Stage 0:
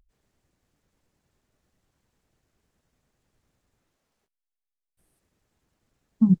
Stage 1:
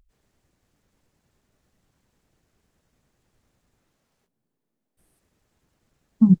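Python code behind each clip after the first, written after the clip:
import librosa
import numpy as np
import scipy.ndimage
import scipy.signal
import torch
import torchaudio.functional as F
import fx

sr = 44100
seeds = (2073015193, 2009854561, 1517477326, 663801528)

y = fx.echo_stepped(x, sr, ms=635, hz=180.0, octaves=0.7, feedback_pct=70, wet_db=-6.0)
y = y * 10.0 ** (3.5 / 20.0)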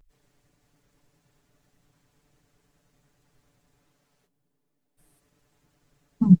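y = x + 0.88 * np.pad(x, (int(6.9 * sr / 1000.0), 0))[:len(x)]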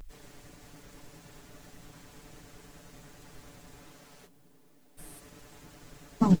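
y = fx.peak_eq(x, sr, hz=130.0, db=-7.0, octaves=0.27)
y = fx.spectral_comp(y, sr, ratio=2.0)
y = y * 10.0 ** (-5.0 / 20.0)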